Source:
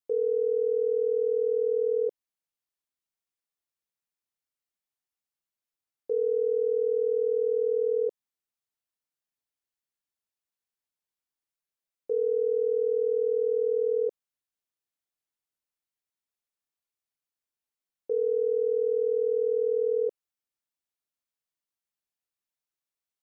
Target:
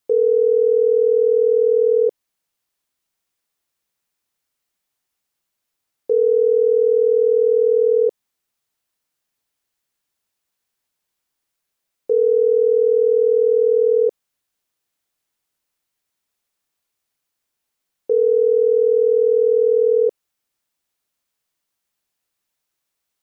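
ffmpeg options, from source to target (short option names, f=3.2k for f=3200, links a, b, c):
-filter_complex "[0:a]asplit=2[a][b];[b]alimiter=level_in=3.5dB:limit=-24dB:level=0:latency=1:release=20,volume=-3.5dB,volume=-2.5dB[c];[a][c]amix=inputs=2:normalize=0,volume=8dB"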